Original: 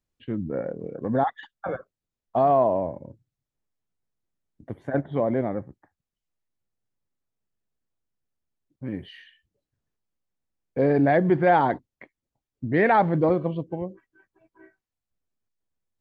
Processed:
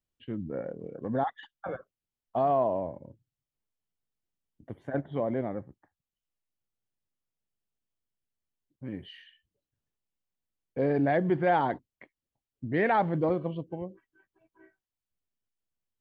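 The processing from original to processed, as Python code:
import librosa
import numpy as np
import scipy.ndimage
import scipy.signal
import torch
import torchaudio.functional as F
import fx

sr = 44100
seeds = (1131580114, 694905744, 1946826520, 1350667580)

y = fx.peak_eq(x, sr, hz=3000.0, db=5.0, octaves=0.3)
y = y * 10.0 ** (-6.0 / 20.0)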